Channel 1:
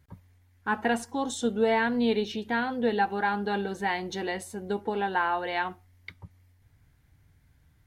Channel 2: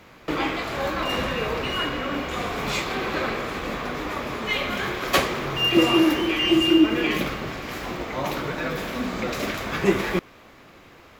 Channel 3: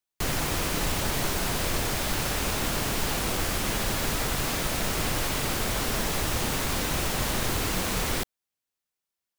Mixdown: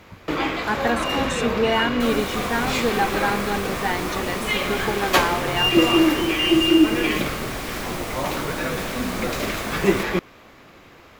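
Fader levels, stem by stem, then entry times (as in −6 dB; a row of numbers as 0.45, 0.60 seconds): +3.0, +1.5, −6.0 decibels; 0.00, 0.00, 1.80 seconds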